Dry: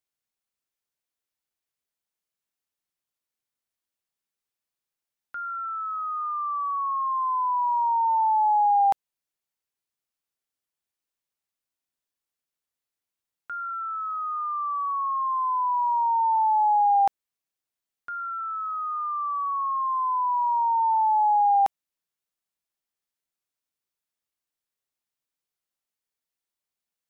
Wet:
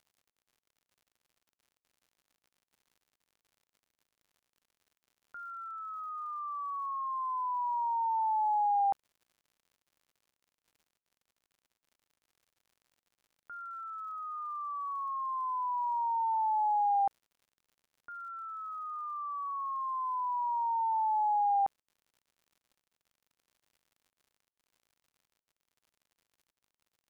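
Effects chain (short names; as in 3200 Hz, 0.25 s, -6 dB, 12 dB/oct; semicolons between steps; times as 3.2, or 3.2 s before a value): LPF 1300 Hz 12 dB/oct; crackle 92/s -49 dBFS; gain -7.5 dB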